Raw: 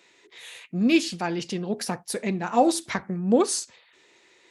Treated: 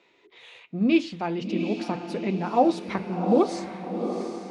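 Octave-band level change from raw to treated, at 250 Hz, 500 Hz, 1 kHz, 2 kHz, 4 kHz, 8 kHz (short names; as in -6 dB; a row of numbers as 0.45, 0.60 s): +0.5 dB, +0.5 dB, +0.5 dB, -3.5 dB, -6.5 dB, under -15 dB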